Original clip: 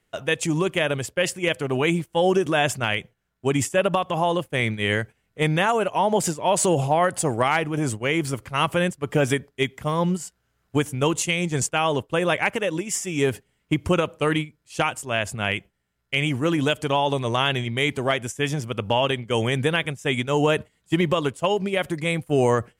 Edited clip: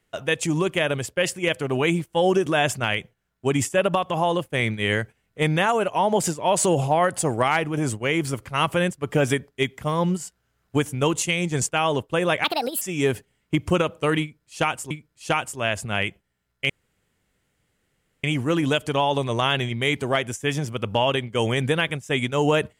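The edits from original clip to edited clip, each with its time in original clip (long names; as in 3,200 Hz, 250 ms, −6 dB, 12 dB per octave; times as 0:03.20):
0:12.44–0:13.00: play speed 149%
0:14.40–0:15.09: repeat, 2 plays
0:16.19: splice in room tone 1.54 s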